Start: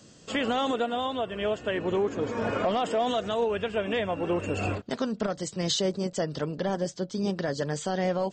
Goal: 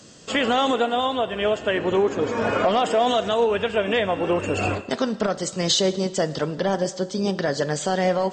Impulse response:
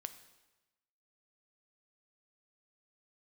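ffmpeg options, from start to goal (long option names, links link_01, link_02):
-filter_complex "[0:a]asplit=2[link_01][link_02];[1:a]atrim=start_sample=2205,asetrate=34839,aresample=44100,lowshelf=frequency=210:gain=-11.5[link_03];[link_02][link_03]afir=irnorm=-1:irlink=0,volume=5.5dB[link_04];[link_01][link_04]amix=inputs=2:normalize=0"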